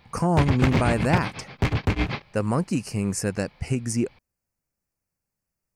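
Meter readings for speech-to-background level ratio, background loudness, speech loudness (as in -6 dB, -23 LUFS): 0.5 dB, -26.0 LUFS, -25.5 LUFS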